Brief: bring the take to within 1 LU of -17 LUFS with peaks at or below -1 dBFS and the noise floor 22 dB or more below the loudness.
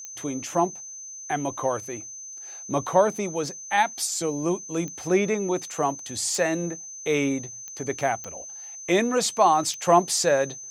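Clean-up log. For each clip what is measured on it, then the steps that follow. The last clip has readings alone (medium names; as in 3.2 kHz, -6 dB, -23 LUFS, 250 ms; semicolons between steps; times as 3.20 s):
clicks found 6; steady tone 6.2 kHz; tone level -37 dBFS; loudness -25.0 LUFS; peak level -6.5 dBFS; loudness target -17.0 LUFS
-> de-click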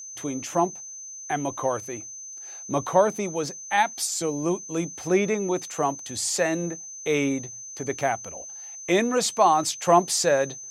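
clicks found 0; steady tone 6.2 kHz; tone level -37 dBFS
-> band-stop 6.2 kHz, Q 30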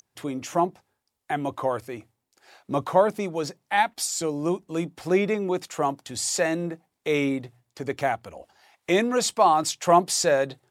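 steady tone not found; loudness -25.0 LUFS; peak level -7.0 dBFS; loudness target -17.0 LUFS
-> trim +8 dB; peak limiter -1 dBFS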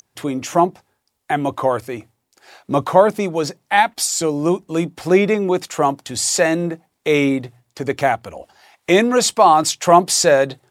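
loudness -17.5 LUFS; peak level -1.0 dBFS; noise floor -72 dBFS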